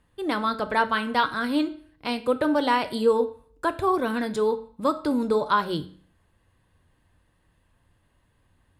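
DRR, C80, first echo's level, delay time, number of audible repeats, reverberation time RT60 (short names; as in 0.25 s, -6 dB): 9.0 dB, 18.5 dB, none, none, none, 0.50 s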